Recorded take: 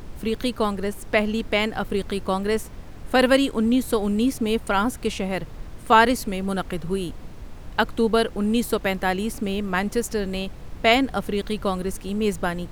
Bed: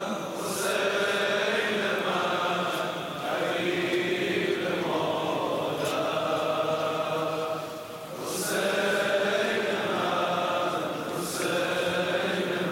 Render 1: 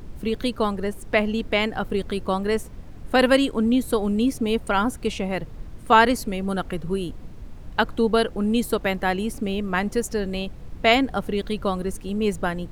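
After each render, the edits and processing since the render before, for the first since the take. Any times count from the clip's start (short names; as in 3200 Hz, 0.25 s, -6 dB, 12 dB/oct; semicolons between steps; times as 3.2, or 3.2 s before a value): denoiser 6 dB, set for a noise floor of -40 dBFS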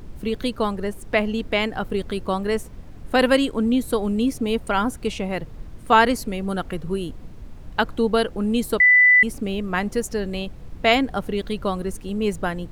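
8.8–9.23 bleep 1990 Hz -10 dBFS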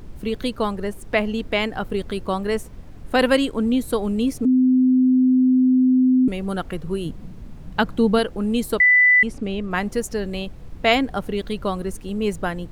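4.45–6.28 bleep 256 Hz -12.5 dBFS; 7.05–8.19 bell 180 Hz +9 dB; 8.83–9.71 air absorption 62 m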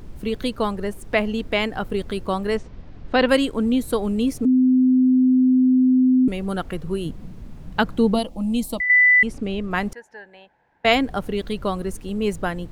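2.57–3.29 LPF 5200 Hz 24 dB/oct; 8.14–8.9 fixed phaser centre 410 Hz, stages 6; 9.93–10.85 double band-pass 1200 Hz, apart 0.87 oct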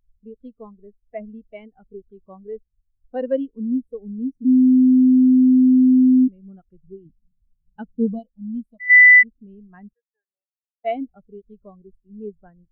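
spectral expander 2.5:1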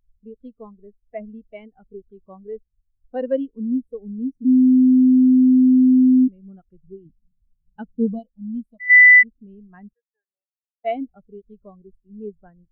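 nothing audible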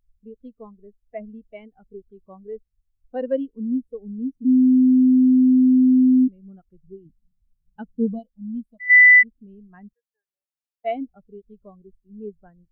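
gain -1.5 dB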